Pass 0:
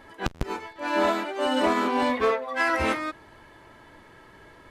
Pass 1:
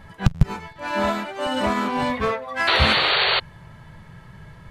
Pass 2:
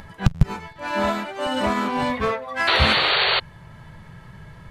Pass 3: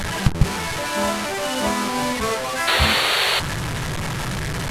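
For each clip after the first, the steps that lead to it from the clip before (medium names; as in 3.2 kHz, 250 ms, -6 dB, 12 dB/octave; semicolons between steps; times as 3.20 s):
resonant low shelf 220 Hz +10.5 dB, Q 3; painted sound noise, 2.67–3.40 s, 370–4600 Hz -21 dBFS; trim +1.5 dB
upward compressor, threshold -38 dBFS
one-bit delta coder 64 kbps, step -19 dBFS; de-hum 87.85 Hz, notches 19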